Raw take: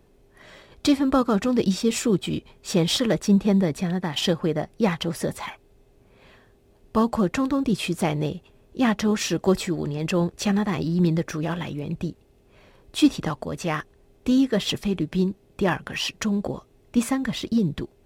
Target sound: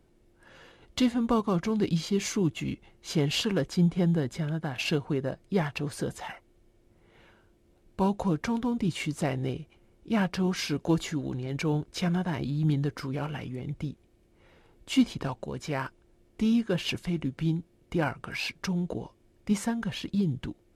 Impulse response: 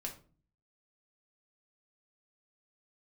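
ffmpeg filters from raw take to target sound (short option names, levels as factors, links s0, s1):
-af "asetrate=38367,aresample=44100,volume=0.531"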